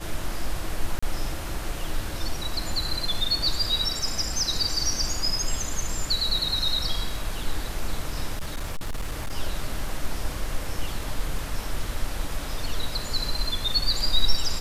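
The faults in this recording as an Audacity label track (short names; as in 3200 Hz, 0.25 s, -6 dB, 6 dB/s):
0.990000	1.020000	gap 35 ms
8.370000	9.330000	clipped -24.5 dBFS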